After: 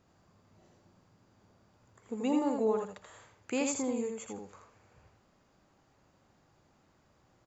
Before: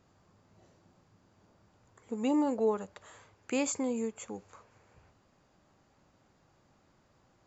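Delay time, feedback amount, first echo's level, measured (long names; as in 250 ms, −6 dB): 82 ms, 15%, −4.5 dB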